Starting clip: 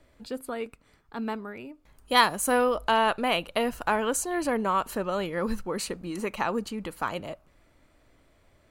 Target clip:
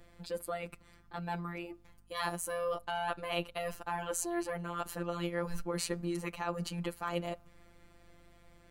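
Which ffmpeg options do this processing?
-af "areverse,acompressor=threshold=0.0224:ratio=16,areverse,afftfilt=real='hypot(re,im)*cos(PI*b)':imag='0':win_size=1024:overlap=0.75,aeval=exprs='val(0)+0.000355*(sin(2*PI*50*n/s)+sin(2*PI*2*50*n/s)/2+sin(2*PI*3*50*n/s)/3+sin(2*PI*4*50*n/s)/4+sin(2*PI*5*50*n/s)/5)':c=same,volume=1.68"

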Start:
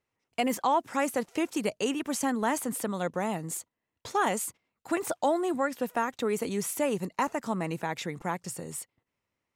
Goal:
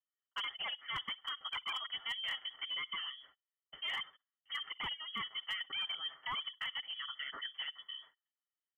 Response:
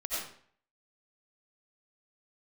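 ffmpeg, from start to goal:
-filter_complex "[0:a]asplit=3[s0][s1][s2];[s0]bandpass=f=530:t=q:w=8,volume=1[s3];[s1]bandpass=f=1840:t=q:w=8,volume=0.501[s4];[s2]bandpass=f=2480:t=q:w=8,volume=0.355[s5];[s3][s4][s5]amix=inputs=3:normalize=0,aecho=1:1:7:0.98,acrossover=split=290|1800[s6][s7][s8];[s7]aeval=exprs='0.0158*(abs(mod(val(0)/0.0158+3,4)-2)-1)':c=same[s9];[s6][s9][s8]amix=inputs=3:normalize=0,highshelf=f=2700:g=8,asplit=2[s10][s11];[s11]adelay=71,lowpass=f=850:p=1,volume=0.119,asplit=2[s12][s13];[s13]adelay=71,lowpass=f=850:p=1,volume=0.28[s14];[s10][s12][s14]amix=inputs=3:normalize=0,asetrate=48000,aresample=44100,agate=range=0.251:threshold=0.002:ratio=16:detection=peak,asetrate=35002,aresample=44100,atempo=1.25992,lowpass=f=3000:t=q:w=0.5098,lowpass=f=3000:t=q:w=0.6013,lowpass=f=3000:t=q:w=0.9,lowpass=f=3000:t=q:w=2.563,afreqshift=-3500,asoftclip=type=hard:threshold=0.0282"

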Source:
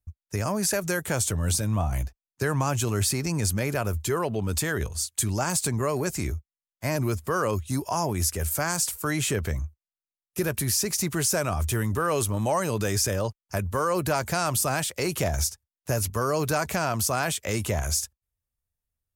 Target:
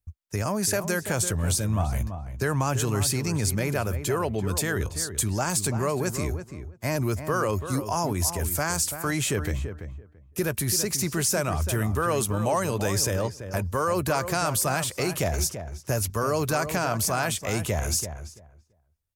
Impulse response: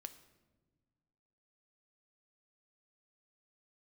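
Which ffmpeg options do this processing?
-filter_complex "[0:a]asplit=2[s0][s1];[s1]adelay=336,lowpass=f=1700:p=1,volume=0.355,asplit=2[s2][s3];[s3]adelay=336,lowpass=f=1700:p=1,volume=0.17,asplit=2[s4][s5];[s5]adelay=336,lowpass=f=1700:p=1,volume=0.17[s6];[s0][s2][s4][s6]amix=inputs=4:normalize=0"

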